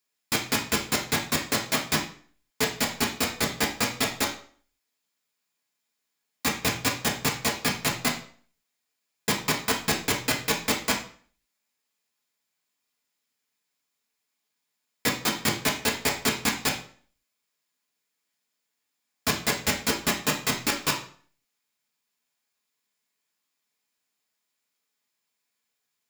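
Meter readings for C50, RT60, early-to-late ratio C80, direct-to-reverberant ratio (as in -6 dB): 8.0 dB, 0.50 s, 13.0 dB, -1.5 dB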